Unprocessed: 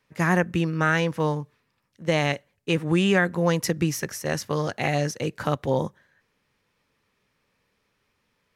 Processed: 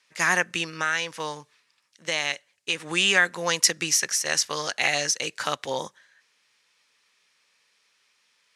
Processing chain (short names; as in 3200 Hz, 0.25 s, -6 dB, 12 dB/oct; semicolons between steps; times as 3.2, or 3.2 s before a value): weighting filter ITU-R 468; 0.63–2.8 compressor 1.5:1, threshold -31 dBFS, peak gain reduction 6 dB